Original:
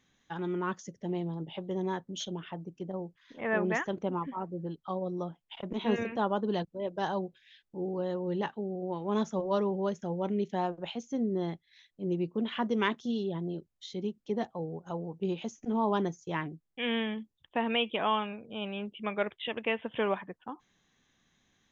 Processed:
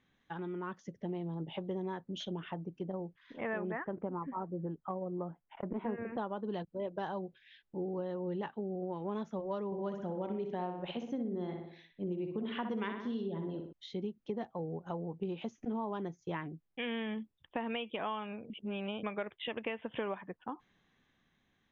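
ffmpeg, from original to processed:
-filter_complex "[0:a]asettb=1/sr,asplit=3[a][b][c];[a]atrim=end=3.714[d];[b]atrim=start=3.71:end=6.18,asetpts=PTS-STARTPTS,afade=t=in:d=0.004:c=qsin,afade=t=out:st=2.466:d=0.004:c=qsin,lowpass=f=1.9k:w=0.5412,lowpass=f=1.9k:w=1.3066[e];[c]atrim=start=6.176[f];[d][e]acrossfade=d=0.004:c1=hsin:c2=qsin[g];[g][f]acrossfade=d=0.004:c1=qsin:c2=hsin,asettb=1/sr,asplit=3[h][i][j];[h]atrim=end=9.664[k];[i]atrim=start=9.66:end=13.73,asetpts=PTS-STARTPTS,afade=t=in:d=0.004:c=qsin,afade=t=out:st=4.066:d=0.004:c=qsin,asplit=2[l][m];[m]adelay=61,lowpass=f=3.5k:p=1,volume=-6dB,asplit=2[n][o];[o]adelay=61,lowpass=f=3.5k:p=1,volume=0.49,asplit=2[p][q];[q]adelay=61,lowpass=f=3.5k:p=1,volume=0.49,asplit=2[r][s];[s]adelay=61,lowpass=f=3.5k:p=1,volume=0.49,asplit=2[t][u];[u]adelay=61,lowpass=f=3.5k:p=1,volume=0.49,asplit=2[v][w];[w]adelay=61,lowpass=f=3.5k:p=1,volume=0.49[x];[l][n][p][r][t][v][x]amix=inputs=7:normalize=0,atrim=end_sample=179487[y];[j]atrim=start=13.726[z];[k][y]acrossfade=d=0.004:c1=hsin:c2=qsin[aa];[aa][z]acrossfade=d=0.004:c1=qsin:c2=hsin,asplit=3[ab][ac][ad];[ab]atrim=end=18.502[ae];[ac]atrim=start=18.498:end=19.032,asetpts=PTS-STARTPTS,areverse[af];[ad]atrim=start=19.028[ag];[ae][af]acrossfade=d=0.004:c1=hsin:c2=hsin[ah];[ah][ag]acrossfade=d=0.004:c1=hsin:c2=hsin,acompressor=threshold=-35dB:ratio=6,lowpass=3.1k,dynaudnorm=f=150:g=11:m=3dB,volume=-2dB"

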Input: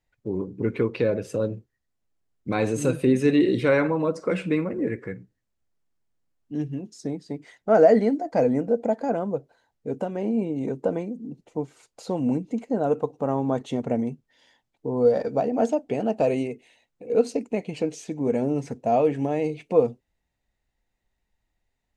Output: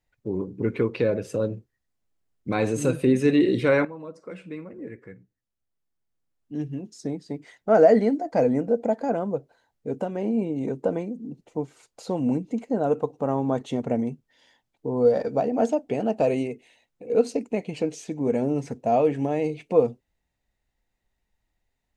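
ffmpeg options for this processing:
-filter_complex "[0:a]asplit=2[a][b];[a]atrim=end=3.85,asetpts=PTS-STARTPTS,afade=t=out:st=3.846:d=0.004:c=hsin:silence=0.188365[c];[b]atrim=start=3.85,asetpts=PTS-STARTPTS,afade=t=in:d=3.12:c=qua:silence=0.188365[d];[c][d]concat=n=2:v=0:a=1"

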